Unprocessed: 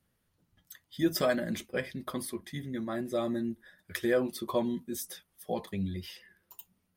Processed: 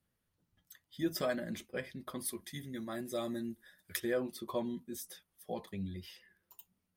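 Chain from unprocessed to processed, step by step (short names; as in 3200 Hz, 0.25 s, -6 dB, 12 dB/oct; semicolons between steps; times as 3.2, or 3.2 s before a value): 2.25–4 high shelf 3700 Hz +11.5 dB; gain -6.5 dB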